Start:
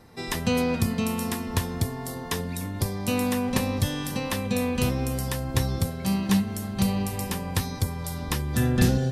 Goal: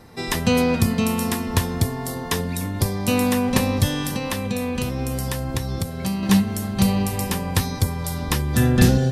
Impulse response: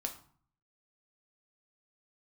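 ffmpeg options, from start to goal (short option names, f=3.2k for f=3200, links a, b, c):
-filter_complex "[0:a]asettb=1/sr,asplit=3[a][b][c];[a]atrim=end=4.084[d];[b]atrim=start=4.08:end=6.23,asetpts=PTS-STARTPTS,afade=t=in:d=0.004:c=qsin,afade=t=out:st=2.146:d=0.004:c=qsin,acompressor=threshold=-27dB:ratio=6[e];[c]atrim=start=6.226[f];[d][e]acrossfade=d=0.004:c1=hsin:c2=qsin[g];[g][f]acrossfade=d=0.004:c1=qsin:c2=hsin,volume=5.5dB"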